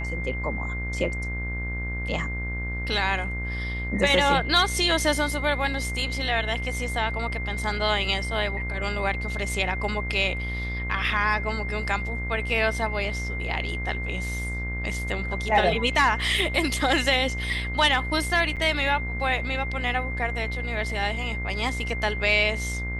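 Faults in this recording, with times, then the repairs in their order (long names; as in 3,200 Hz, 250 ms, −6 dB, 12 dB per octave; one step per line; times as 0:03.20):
mains buzz 60 Hz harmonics 34 −31 dBFS
whistle 2,100 Hz −32 dBFS
0:18.56–0:18.57: drop-out 7.6 ms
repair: notch filter 2,100 Hz, Q 30
hum removal 60 Hz, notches 34
repair the gap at 0:18.56, 7.6 ms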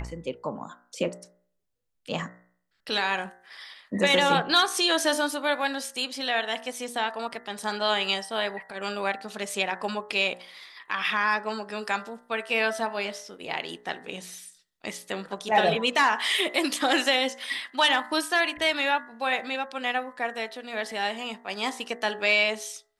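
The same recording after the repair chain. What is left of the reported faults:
none of them is left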